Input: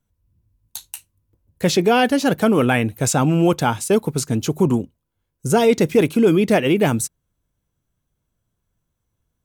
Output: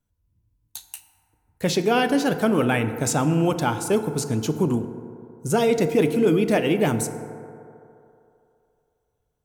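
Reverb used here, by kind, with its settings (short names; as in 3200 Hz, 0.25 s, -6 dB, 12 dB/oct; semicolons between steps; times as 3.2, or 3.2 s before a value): FDN reverb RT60 2.8 s, low-frequency decay 0.75×, high-frequency decay 0.3×, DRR 8.5 dB; gain -4.5 dB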